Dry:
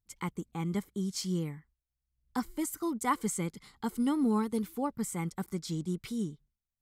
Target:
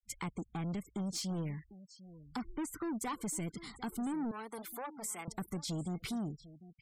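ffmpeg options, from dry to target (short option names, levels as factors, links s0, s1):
-filter_complex "[0:a]asplit=3[s0][s1][s2];[s0]afade=t=out:st=2.39:d=0.02[s3];[s1]lowpass=f=2500:p=1,afade=t=in:st=2.39:d=0.02,afade=t=out:st=2.99:d=0.02[s4];[s2]afade=t=in:st=2.99:d=0.02[s5];[s3][s4][s5]amix=inputs=3:normalize=0,alimiter=level_in=1.5:limit=0.0631:level=0:latency=1:release=226,volume=0.668,asoftclip=type=tanh:threshold=0.0133,asettb=1/sr,asplit=3[s6][s7][s8];[s6]atrim=end=4.314[s9];[s7]atrim=start=4.31:end=5.28,asetpts=PTS-STARTPTS,afade=t=in:d=0.004:c=qsin,afade=t=out:st=0.966:d=0.004:c=qsin,highpass=540[s10];[s8]atrim=start=5.276[s11];[s9][s10]acrossfade=d=0.004:c1=hsin:c2=qsin[s12];[s12][s11]acrossfade=d=0.004:c1=qsin:c2=hsin,acompressor=threshold=0.00282:ratio=1.5,aecho=1:1:748:0.141,acontrast=25,afftfilt=real='re*gte(hypot(re,im),0.00178)':imag='im*gte(hypot(re,im),0.00178)':win_size=1024:overlap=0.75,volume=1.41"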